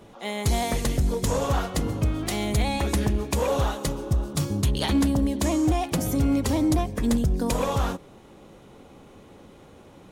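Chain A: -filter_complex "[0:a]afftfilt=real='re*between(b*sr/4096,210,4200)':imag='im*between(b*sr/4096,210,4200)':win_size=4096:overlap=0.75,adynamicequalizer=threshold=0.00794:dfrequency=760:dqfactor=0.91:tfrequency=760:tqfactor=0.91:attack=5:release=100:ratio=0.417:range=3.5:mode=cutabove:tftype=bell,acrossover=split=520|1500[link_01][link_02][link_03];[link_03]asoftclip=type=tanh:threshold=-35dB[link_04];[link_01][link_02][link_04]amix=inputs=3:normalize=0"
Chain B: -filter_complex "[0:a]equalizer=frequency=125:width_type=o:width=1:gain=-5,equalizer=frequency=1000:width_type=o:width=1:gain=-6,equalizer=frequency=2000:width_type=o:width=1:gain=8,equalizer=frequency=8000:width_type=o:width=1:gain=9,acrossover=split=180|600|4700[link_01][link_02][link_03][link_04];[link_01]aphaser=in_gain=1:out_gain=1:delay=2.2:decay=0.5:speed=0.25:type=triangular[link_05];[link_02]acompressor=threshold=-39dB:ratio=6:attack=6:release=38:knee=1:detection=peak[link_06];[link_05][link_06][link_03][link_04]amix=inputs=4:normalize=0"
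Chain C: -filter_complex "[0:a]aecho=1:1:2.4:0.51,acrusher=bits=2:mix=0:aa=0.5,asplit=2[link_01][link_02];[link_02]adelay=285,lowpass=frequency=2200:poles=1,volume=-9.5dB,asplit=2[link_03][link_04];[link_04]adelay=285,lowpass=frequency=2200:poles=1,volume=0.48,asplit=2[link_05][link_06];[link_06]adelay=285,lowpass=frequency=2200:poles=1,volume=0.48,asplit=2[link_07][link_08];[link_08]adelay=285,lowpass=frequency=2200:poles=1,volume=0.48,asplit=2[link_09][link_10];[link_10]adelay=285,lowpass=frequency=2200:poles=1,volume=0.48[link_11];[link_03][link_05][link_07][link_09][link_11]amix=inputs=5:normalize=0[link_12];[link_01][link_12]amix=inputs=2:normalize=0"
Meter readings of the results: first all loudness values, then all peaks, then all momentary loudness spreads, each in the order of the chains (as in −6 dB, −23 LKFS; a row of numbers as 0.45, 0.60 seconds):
−30.0, −24.5, −26.5 LKFS; −16.0, −7.5, −7.5 dBFS; 10, 4, 7 LU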